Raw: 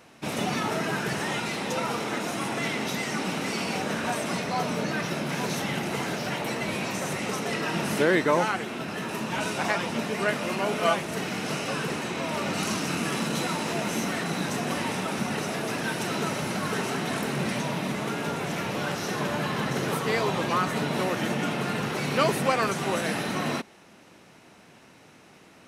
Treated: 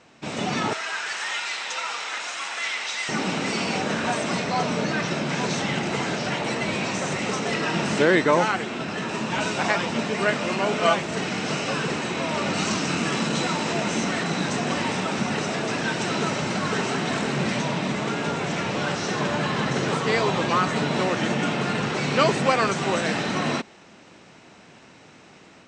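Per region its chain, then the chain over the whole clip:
0.73–3.09 HPF 1200 Hz + lo-fi delay 86 ms, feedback 80%, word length 9-bit, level -13.5 dB
whole clip: AGC gain up to 4.5 dB; elliptic low-pass 8000 Hz, stop band 40 dB

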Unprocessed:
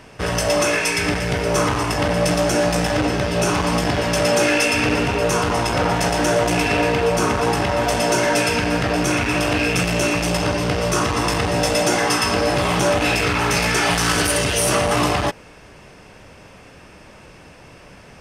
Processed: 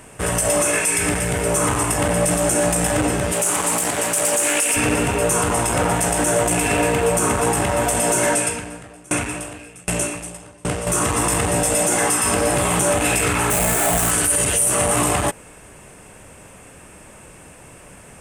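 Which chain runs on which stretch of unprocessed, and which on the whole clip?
3.32–4.76 HPF 410 Hz 6 dB/oct + high shelf 7800 Hz +10 dB + Doppler distortion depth 0.21 ms
8.34–10.87 steep low-pass 12000 Hz 48 dB/oct + dB-ramp tremolo decaying 1.3 Hz, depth 29 dB
13.5–14.11 half-waves squared off + bell 670 Hz +10.5 dB 0.32 oct
whole clip: resonant high shelf 6500 Hz +9 dB, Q 3; limiter -8.5 dBFS

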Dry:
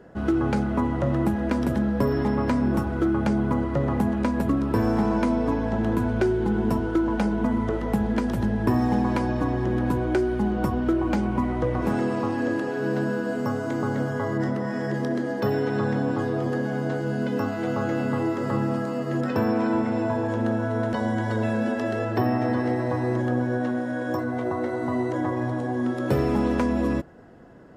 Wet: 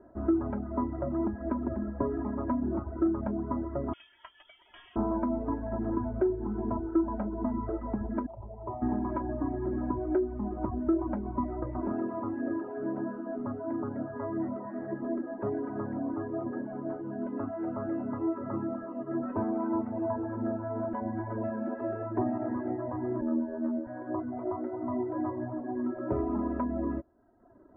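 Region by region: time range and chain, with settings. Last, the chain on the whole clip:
3.93–4.96 inverted band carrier 3400 Hz + doubler 18 ms -12.5 dB
8.26–8.82 low shelf 350 Hz -6 dB + fixed phaser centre 670 Hz, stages 4
23.21–23.87 comb 3.4 ms, depth 93% + robotiser 80.1 Hz
whole clip: reverb removal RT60 1 s; LPF 1300 Hz 24 dB/oct; comb 3.1 ms, depth 85%; gain -7.5 dB

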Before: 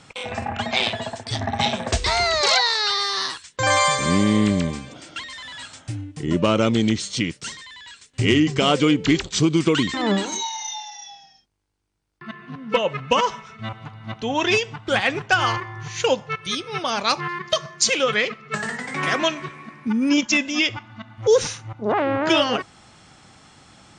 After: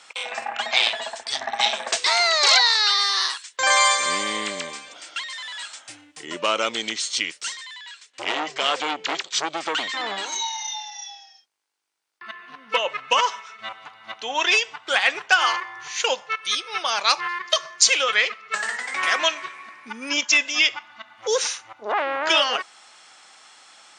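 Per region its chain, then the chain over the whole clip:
7.78–10.96 air absorption 57 m + core saturation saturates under 890 Hz
whole clip: HPF 600 Hz 12 dB/oct; tilt shelf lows -3.5 dB, about 830 Hz

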